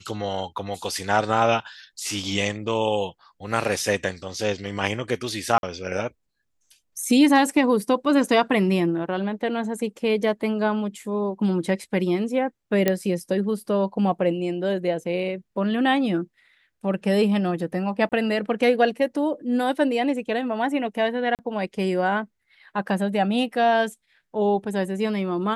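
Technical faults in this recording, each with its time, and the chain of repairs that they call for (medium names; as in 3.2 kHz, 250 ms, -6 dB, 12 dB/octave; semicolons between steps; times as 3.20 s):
5.58–5.63 s: dropout 51 ms
12.88 s: pop -6 dBFS
18.09–18.12 s: dropout 28 ms
21.35–21.39 s: dropout 38 ms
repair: de-click; interpolate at 5.58 s, 51 ms; interpolate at 18.09 s, 28 ms; interpolate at 21.35 s, 38 ms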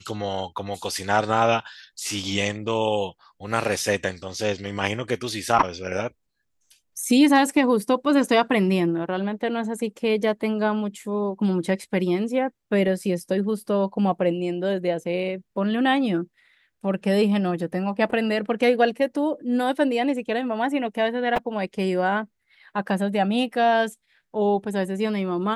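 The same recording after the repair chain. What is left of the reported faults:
nothing left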